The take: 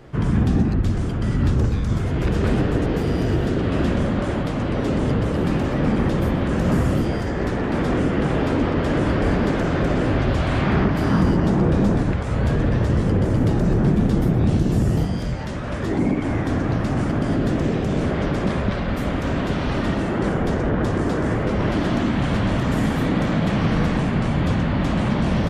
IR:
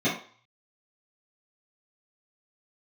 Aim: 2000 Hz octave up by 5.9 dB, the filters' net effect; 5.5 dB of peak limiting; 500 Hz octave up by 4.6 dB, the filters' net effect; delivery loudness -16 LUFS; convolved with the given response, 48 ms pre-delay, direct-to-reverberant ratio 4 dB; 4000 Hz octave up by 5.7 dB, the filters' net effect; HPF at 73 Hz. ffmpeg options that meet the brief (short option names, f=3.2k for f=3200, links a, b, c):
-filter_complex "[0:a]highpass=73,equalizer=f=500:t=o:g=5.5,equalizer=f=2k:t=o:g=6,equalizer=f=4k:t=o:g=5,alimiter=limit=-10.5dB:level=0:latency=1,asplit=2[a][b];[1:a]atrim=start_sample=2205,adelay=48[c];[b][c]afir=irnorm=-1:irlink=0,volume=-17.5dB[d];[a][d]amix=inputs=2:normalize=0,volume=0.5dB"